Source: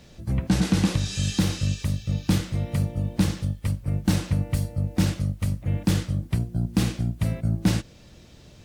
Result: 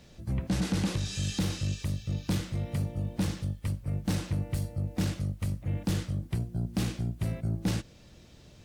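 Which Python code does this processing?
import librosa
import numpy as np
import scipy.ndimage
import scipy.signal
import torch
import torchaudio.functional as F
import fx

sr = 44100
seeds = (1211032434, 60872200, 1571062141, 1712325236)

y = 10.0 ** (-17.0 / 20.0) * np.tanh(x / 10.0 ** (-17.0 / 20.0))
y = F.gain(torch.from_numpy(y), -4.5).numpy()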